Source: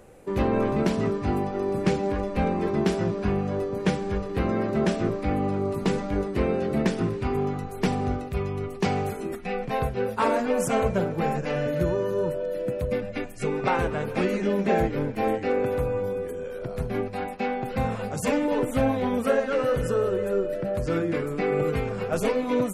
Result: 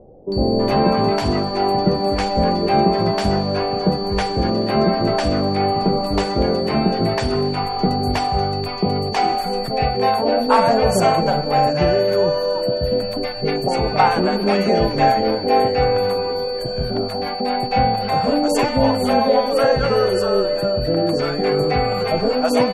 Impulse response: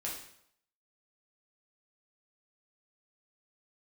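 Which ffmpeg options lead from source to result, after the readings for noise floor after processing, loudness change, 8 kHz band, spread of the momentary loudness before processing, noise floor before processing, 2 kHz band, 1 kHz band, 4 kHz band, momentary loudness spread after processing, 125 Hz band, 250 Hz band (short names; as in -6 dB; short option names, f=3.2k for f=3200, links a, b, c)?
-25 dBFS, +8.0 dB, +5.5 dB, 6 LU, -35 dBFS, +6.0 dB, +12.5 dB, +17.0 dB, 6 LU, +5.5 dB, +6.0 dB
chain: -filter_complex "[0:a]equalizer=f=730:w=1.9:g=11,aeval=exprs='val(0)+0.0158*sin(2*PI*4500*n/s)':c=same,acrossover=split=600[a][b];[b]adelay=320[c];[a][c]amix=inputs=2:normalize=0,volume=5.5dB"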